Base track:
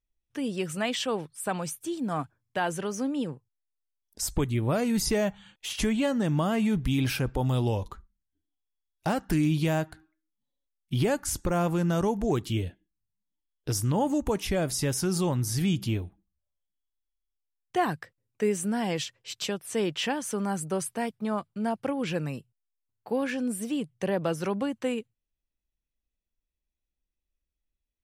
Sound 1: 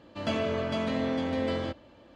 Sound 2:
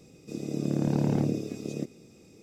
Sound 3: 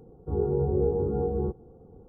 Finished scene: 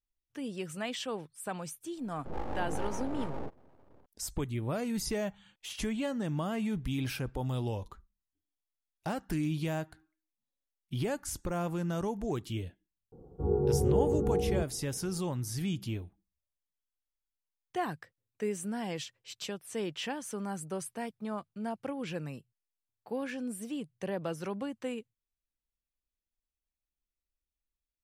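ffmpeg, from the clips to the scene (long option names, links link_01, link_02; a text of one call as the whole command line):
ffmpeg -i bed.wav -i cue0.wav -i cue1.wav -i cue2.wav -filter_complex "[3:a]asplit=2[link_01][link_02];[0:a]volume=-7.5dB[link_03];[link_01]aeval=exprs='abs(val(0))':channel_layout=same,atrim=end=2.08,asetpts=PTS-STARTPTS,volume=-8dB,afade=type=in:duration=0.004:curve=hsin,afade=type=out:start_time=2.076:duration=0.004:curve=hsin,adelay=1980[link_04];[link_02]atrim=end=2.08,asetpts=PTS-STARTPTS,volume=-2dB,afade=type=in:duration=0.004:curve=hsin,afade=type=out:start_time=2.076:duration=0.004:curve=hsin,adelay=13120[link_05];[link_03][link_04][link_05]amix=inputs=3:normalize=0" out.wav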